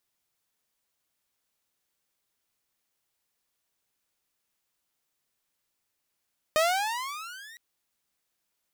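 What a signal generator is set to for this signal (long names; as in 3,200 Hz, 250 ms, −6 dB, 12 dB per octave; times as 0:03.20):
pitch glide with a swell saw, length 1.01 s, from 610 Hz, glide +20 semitones, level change −26 dB, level −17 dB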